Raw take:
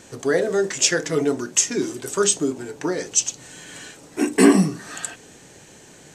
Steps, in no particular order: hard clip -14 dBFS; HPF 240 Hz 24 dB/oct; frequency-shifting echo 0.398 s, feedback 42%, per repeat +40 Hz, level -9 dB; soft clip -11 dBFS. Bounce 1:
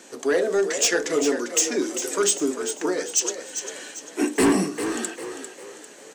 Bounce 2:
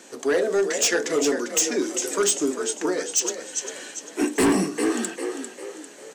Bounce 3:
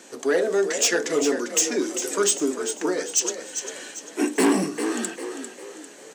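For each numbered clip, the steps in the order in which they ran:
HPF > soft clip > hard clip > frequency-shifting echo; frequency-shifting echo > HPF > hard clip > soft clip; soft clip > frequency-shifting echo > hard clip > HPF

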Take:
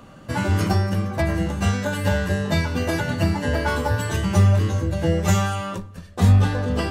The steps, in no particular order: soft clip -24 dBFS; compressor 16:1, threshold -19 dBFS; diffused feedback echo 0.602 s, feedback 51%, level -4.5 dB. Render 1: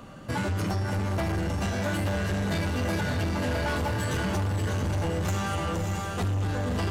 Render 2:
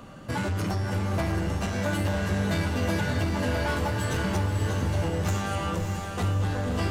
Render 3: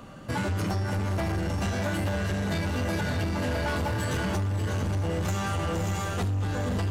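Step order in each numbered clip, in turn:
compressor > diffused feedback echo > soft clip; compressor > soft clip > diffused feedback echo; diffused feedback echo > compressor > soft clip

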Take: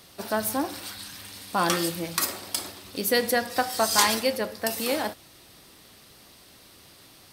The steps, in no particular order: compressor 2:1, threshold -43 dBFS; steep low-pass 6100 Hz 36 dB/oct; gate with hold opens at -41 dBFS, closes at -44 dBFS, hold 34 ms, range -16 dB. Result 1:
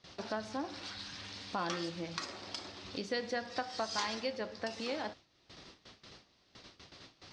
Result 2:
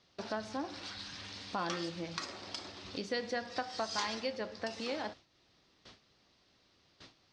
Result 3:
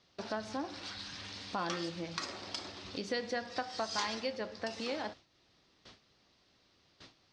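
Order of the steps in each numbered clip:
compressor > gate with hold > steep low-pass; compressor > steep low-pass > gate with hold; steep low-pass > compressor > gate with hold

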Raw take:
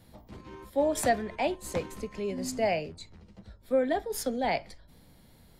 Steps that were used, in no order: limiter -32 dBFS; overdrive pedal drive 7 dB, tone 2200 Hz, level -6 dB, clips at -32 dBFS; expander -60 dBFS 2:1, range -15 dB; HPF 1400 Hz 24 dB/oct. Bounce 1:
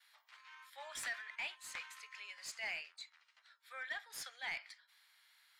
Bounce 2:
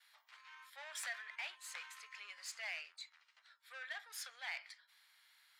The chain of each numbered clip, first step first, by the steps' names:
expander > HPF > overdrive pedal > limiter; expander > overdrive pedal > HPF > limiter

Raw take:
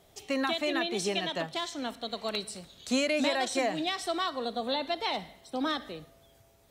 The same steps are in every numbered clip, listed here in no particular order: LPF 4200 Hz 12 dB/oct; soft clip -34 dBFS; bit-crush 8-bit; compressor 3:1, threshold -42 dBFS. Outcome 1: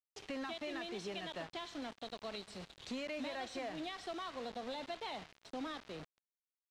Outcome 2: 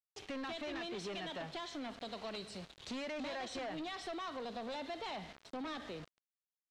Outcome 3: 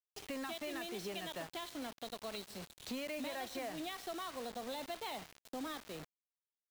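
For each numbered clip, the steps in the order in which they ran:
compressor > soft clip > bit-crush > LPF; bit-crush > soft clip > LPF > compressor; LPF > compressor > bit-crush > soft clip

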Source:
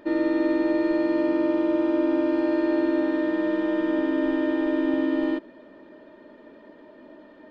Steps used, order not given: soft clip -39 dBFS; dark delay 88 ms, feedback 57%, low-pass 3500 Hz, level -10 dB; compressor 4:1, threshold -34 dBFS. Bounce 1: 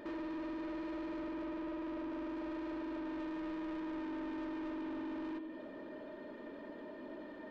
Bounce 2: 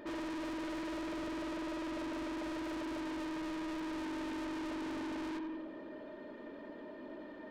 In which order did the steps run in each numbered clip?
compressor > dark delay > soft clip; dark delay > soft clip > compressor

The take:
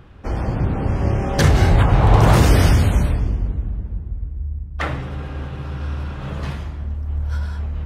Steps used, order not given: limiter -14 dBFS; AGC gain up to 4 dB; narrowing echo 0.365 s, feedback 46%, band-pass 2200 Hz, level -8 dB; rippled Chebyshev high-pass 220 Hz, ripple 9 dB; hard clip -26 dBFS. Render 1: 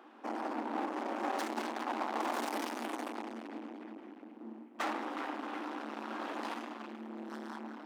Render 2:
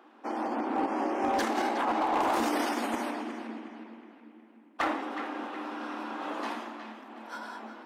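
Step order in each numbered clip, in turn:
limiter > narrowing echo > AGC > hard clip > rippled Chebyshev high-pass; limiter > rippled Chebyshev high-pass > hard clip > narrowing echo > AGC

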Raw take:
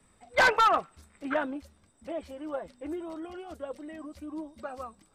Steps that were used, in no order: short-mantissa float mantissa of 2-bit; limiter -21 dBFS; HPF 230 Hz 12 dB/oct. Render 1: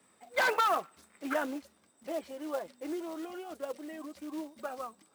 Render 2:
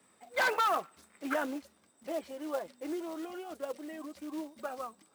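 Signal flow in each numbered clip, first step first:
short-mantissa float > limiter > HPF; short-mantissa float > HPF > limiter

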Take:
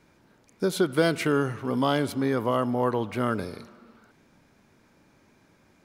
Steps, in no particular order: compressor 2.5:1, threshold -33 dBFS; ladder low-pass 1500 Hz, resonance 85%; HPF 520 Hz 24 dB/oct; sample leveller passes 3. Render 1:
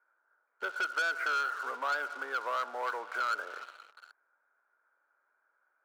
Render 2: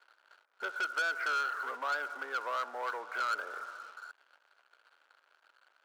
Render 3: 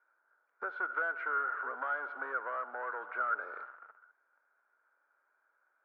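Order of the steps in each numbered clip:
ladder low-pass > sample leveller > compressor > HPF; compressor > ladder low-pass > sample leveller > HPF; sample leveller > HPF > compressor > ladder low-pass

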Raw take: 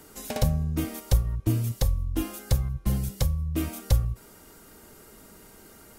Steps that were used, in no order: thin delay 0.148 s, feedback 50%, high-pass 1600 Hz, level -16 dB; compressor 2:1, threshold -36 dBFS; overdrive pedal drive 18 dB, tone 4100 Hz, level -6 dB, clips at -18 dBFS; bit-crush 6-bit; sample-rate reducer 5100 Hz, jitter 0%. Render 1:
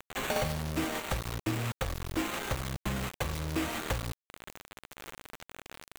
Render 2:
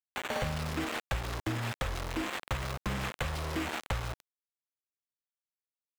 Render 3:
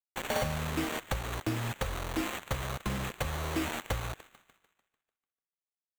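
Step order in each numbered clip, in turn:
compressor > overdrive pedal > sample-rate reducer > thin delay > bit-crush; sample-rate reducer > thin delay > bit-crush > overdrive pedal > compressor; bit-crush > compressor > thin delay > overdrive pedal > sample-rate reducer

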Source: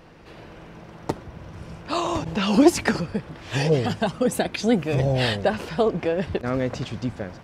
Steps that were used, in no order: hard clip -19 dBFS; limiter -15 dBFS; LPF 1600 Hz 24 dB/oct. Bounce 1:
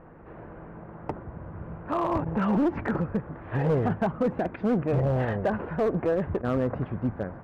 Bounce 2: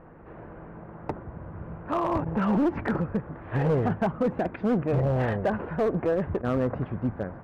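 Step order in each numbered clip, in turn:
limiter > LPF > hard clip; LPF > limiter > hard clip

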